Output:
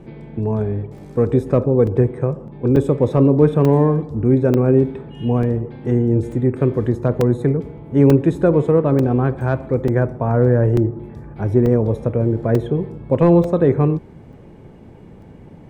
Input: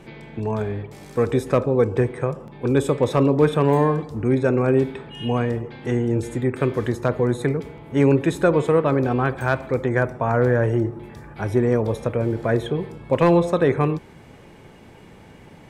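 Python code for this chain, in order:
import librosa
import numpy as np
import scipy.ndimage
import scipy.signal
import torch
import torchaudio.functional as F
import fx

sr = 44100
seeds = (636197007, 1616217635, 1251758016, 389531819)

y = fx.tilt_shelf(x, sr, db=8.5, hz=910.0)
y = fx.buffer_crackle(y, sr, first_s=0.98, period_s=0.89, block=128, kind='zero')
y = F.gain(torch.from_numpy(y), -2.0).numpy()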